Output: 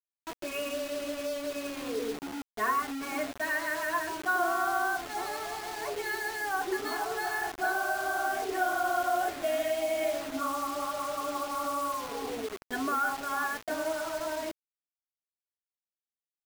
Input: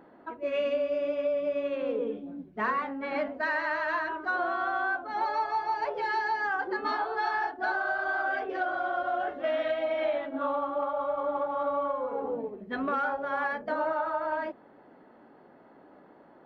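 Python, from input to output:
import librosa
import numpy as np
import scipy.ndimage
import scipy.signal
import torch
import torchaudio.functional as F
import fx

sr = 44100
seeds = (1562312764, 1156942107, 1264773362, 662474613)

y = x + 0.87 * np.pad(x, (int(2.8 * sr / 1000.0), 0))[:len(x)]
y = fx.quant_dither(y, sr, seeds[0], bits=6, dither='none')
y = F.gain(torch.from_numpy(y), -3.5).numpy()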